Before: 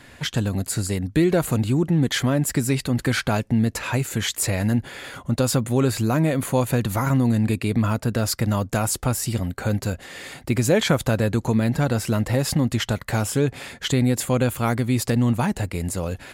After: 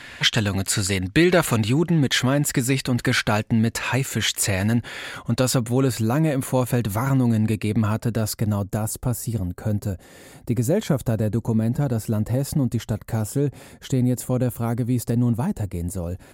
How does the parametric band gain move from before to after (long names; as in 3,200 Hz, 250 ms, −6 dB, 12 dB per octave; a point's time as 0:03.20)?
parametric band 2,600 Hz 3 octaves
0:01.53 +10.5 dB
0:02.02 +4 dB
0:05.38 +4 dB
0:05.80 −2 dB
0:07.95 −2 dB
0:08.82 −13 dB